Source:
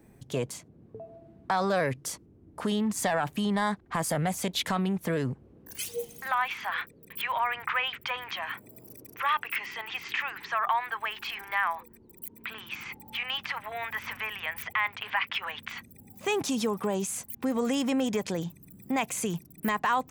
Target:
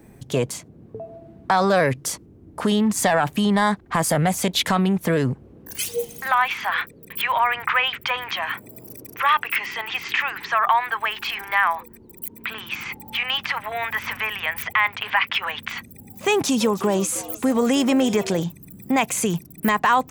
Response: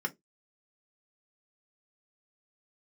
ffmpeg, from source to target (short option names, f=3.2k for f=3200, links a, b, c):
-filter_complex "[0:a]asettb=1/sr,asplit=3[a][b][c];[a]atrim=end=16.294[d];[b]atrim=start=16.29:end=18.43,asetpts=PTS-STARTPTS,afade=t=in:d=0.004:c=qsin,afade=t=out:st=2.136:d=0.004:c=qsin,asplit=5[e][f][g][h][i];[f]adelay=314,afreqshift=120,volume=-16.5dB[j];[g]adelay=628,afreqshift=240,volume=-24dB[k];[h]adelay=942,afreqshift=360,volume=-31.6dB[l];[i]adelay=1256,afreqshift=480,volume=-39.1dB[m];[e][j][k][l][m]amix=inputs=5:normalize=0,atrim=end_sample=94374[n];[c]atrim=start=18.426[o];[d][n]acrossfade=d=0.004:c1=hsin:c2=qsin[p];[p][o]acrossfade=d=0.004:c1=qsin:c2=hsin,volume=8.5dB"